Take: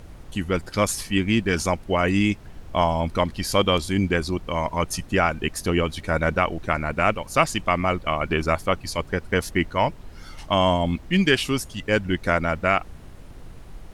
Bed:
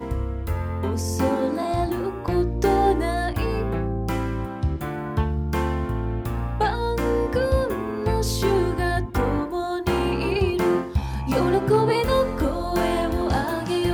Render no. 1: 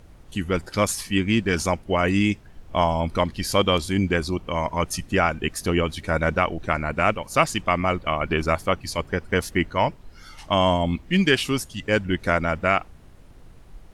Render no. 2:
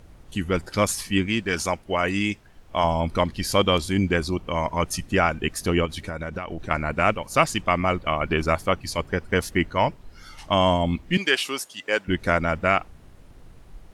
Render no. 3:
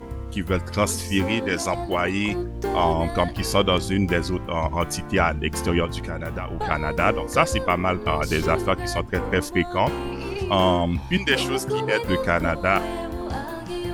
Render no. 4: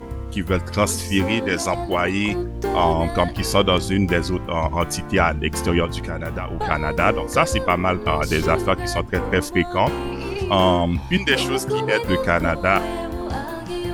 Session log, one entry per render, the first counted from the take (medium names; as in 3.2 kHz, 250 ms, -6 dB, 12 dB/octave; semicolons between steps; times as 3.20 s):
noise print and reduce 6 dB
1.26–2.84 s: bass shelf 390 Hz -7 dB; 5.85–6.71 s: compression 10:1, threshold -26 dBFS; 11.17–12.08 s: high-pass 480 Hz
add bed -6.5 dB
trim +2.5 dB; peak limiter -3 dBFS, peak gain reduction 2 dB